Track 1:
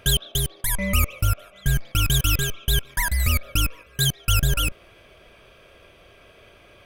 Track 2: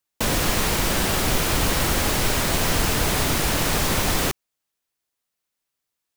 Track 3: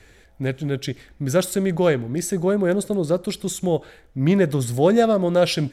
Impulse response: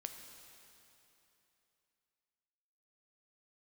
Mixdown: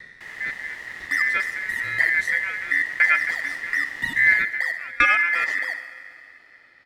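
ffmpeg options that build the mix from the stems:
-filter_complex "[0:a]adelay=1050,volume=-9.5dB,asplit=3[link_01][link_02][link_03];[link_02]volume=-3.5dB[link_04];[link_03]volume=-11.5dB[link_05];[1:a]volume=-18.5dB,asplit=2[link_06][link_07];[link_07]volume=-5.5dB[link_08];[2:a]aeval=exprs='val(0)*pow(10,-29*if(lt(mod(1*n/s,1),2*abs(1)/1000),1-mod(1*n/s,1)/(2*abs(1)/1000),(mod(1*n/s,1)-2*abs(1)/1000)/(1-2*abs(1)/1000))/20)':channel_layout=same,volume=2.5dB,asplit=3[link_09][link_10][link_11];[link_10]volume=-6dB[link_12];[link_11]apad=whole_len=348681[link_13];[link_01][link_13]sidechaincompress=threshold=-27dB:ratio=8:attack=16:release=943[link_14];[3:a]atrim=start_sample=2205[link_15];[link_04][link_12]amix=inputs=2:normalize=0[link_16];[link_16][link_15]afir=irnorm=-1:irlink=0[link_17];[link_05][link_08]amix=inputs=2:normalize=0,aecho=0:1:67|134|201|268|335|402|469|536:1|0.56|0.314|0.176|0.0983|0.0551|0.0308|0.0173[link_18];[link_14][link_06][link_09][link_17][link_18]amix=inputs=5:normalize=0,lowshelf=frequency=230:width_type=q:width=1.5:gain=8,aeval=exprs='val(0)*sin(2*PI*1900*n/s)':channel_layout=same,aemphasis=mode=reproduction:type=50fm"

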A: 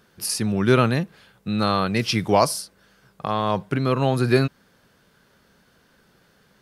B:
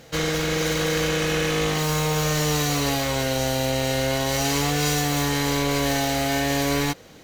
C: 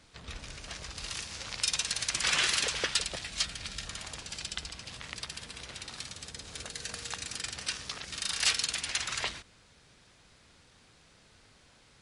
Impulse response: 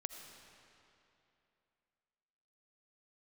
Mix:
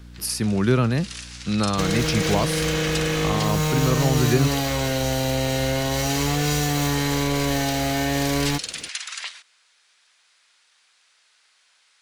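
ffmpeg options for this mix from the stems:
-filter_complex "[0:a]aeval=exprs='val(0)+0.00794*(sin(2*PI*60*n/s)+sin(2*PI*2*60*n/s)/2+sin(2*PI*3*60*n/s)/3+sin(2*PI*4*60*n/s)/4+sin(2*PI*5*60*n/s)/5)':channel_layout=same,volume=1dB[link_01];[1:a]adelay=1650,volume=2.5dB[link_02];[2:a]highpass=1300,volume=2dB[link_03];[link_01][link_02][link_03]amix=inputs=3:normalize=0,acrossover=split=280[link_04][link_05];[link_05]acompressor=threshold=-24dB:ratio=2.5[link_06];[link_04][link_06]amix=inputs=2:normalize=0"

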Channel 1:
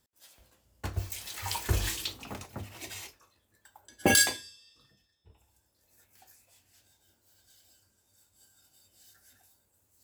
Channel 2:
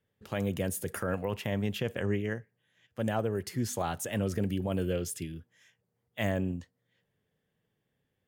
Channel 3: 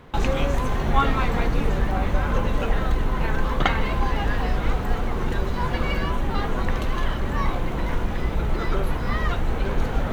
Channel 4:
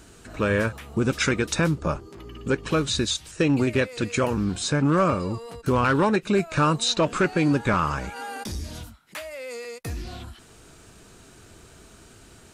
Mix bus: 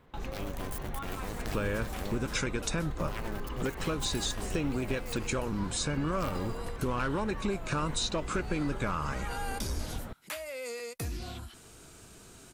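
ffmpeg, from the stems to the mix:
ffmpeg -i stem1.wav -i stem2.wav -i stem3.wav -i stem4.wav -filter_complex "[0:a]acompressor=threshold=-41dB:ratio=1.5,volume=-13.5dB[link_01];[1:a]aeval=exprs='0.158*(cos(1*acos(clip(val(0)/0.158,-1,1)))-cos(1*PI/2))+0.0794*(cos(3*acos(clip(val(0)/0.158,-1,1)))-cos(3*PI/2))+0.0355*(cos(4*acos(clip(val(0)/0.158,-1,1)))-cos(4*PI/2))':channel_layout=same,aeval=exprs='val(0)*gte(abs(val(0)),0.0133)':channel_layout=same,volume=-3.5dB,asplit=2[link_02][link_03];[2:a]alimiter=limit=-14.5dB:level=0:latency=1:release=442,volume=-13.5dB[link_04];[3:a]bandreject=frequency=1800:width=22,adelay=1150,volume=-3.5dB[link_05];[link_03]apad=whole_len=442343[link_06];[link_01][link_06]sidechaingate=range=-33dB:threshold=-45dB:ratio=16:detection=peak[link_07];[link_07][link_02][link_05]amix=inputs=3:normalize=0,highshelf=frequency=8500:gain=7.5,acompressor=threshold=-30dB:ratio=4,volume=0dB[link_08];[link_04][link_08]amix=inputs=2:normalize=0" out.wav

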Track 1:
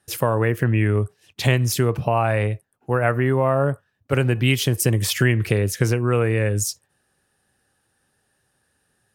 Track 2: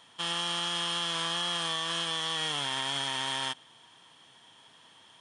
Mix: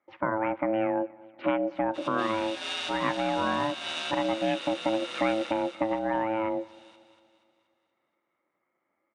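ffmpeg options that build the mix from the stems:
ffmpeg -i stem1.wav -i stem2.wav -filter_complex "[0:a]lowpass=frequency=2000:width=0.5412,lowpass=frequency=2000:width=1.3066,volume=-4.5dB,asplit=3[link_01][link_02][link_03];[link_02]volume=-23.5dB[link_04];[1:a]adelay=1750,volume=1dB,asplit=2[link_05][link_06];[link_06]volume=-7.5dB[link_07];[link_03]apad=whole_len=306782[link_08];[link_05][link_08]sidechaincompress=threshold=-40dB:ratio=8:attack=25:release=138[link_09];[link_04][link_07]amix=inputs=2:normalize=0,aecho=0:1:238|476|714|952|1190|1428|1666:1|0.5|0.25|0.125|0.0625|0.0312|0.0156[link_10];[link_01][link_09][link_10]amix=inputs=3:normalize=0,aeval=exprs='val(0)*sin(2*PI*440*n/s)':channel_layout=same,highpass=210,lowpass=6900" out.wav

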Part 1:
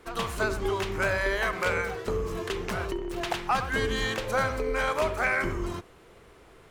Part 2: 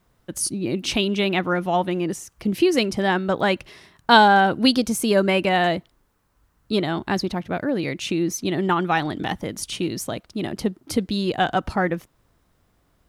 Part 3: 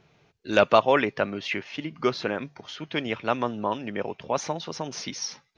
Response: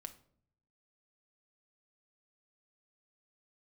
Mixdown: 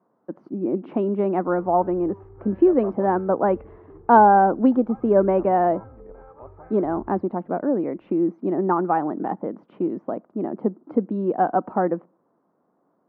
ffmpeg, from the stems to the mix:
-filter_complex "[0:a]equalizer=frequency=97:width=1.5:gain=8.5,aecho=1:1:2.4:0.65,adelay=1400,volume=-19dB[link_01];[1:a]highpass=frequency=210:width=0.5412,highpass=frequency=210:width=1.3066,volume=1.5dB,asplit=2[link_02][link_03];[link_03]volume=-16.5dB[link_04];[2:a]adelay=2100,volume=-18dB[link_05];[3:a]atrim=start_sample=2205[link_06];[link_04][link_06]afir=irnorm=-1:irlink=0[link_07];[link_01][link_02][link_05][link_07]amix=inputs=4:normalize=0,lowpass=frequency=1100:width=0.5412,lowpass=frequency=1100:width=1.3066"

